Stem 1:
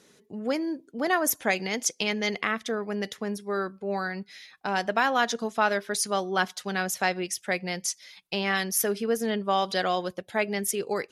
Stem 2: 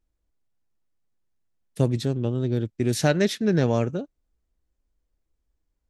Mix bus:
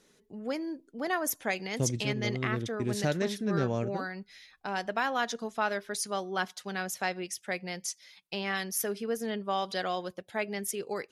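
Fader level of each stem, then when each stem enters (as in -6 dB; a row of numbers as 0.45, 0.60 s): -6.0, -8.5 dB; 0.00, 0.00 s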